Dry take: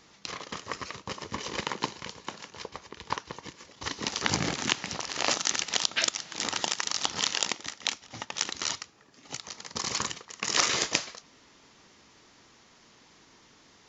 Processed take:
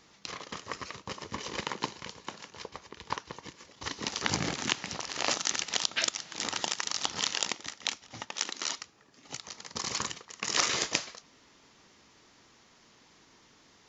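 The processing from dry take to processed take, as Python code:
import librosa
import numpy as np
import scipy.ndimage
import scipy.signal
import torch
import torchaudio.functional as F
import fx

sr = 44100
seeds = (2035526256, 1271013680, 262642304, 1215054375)

y = fx.highpass(x, sr, hz=200.0, slope=24, at=(8.31, 8.79))
y = y * librosa.db_to_amplitude(-2.5)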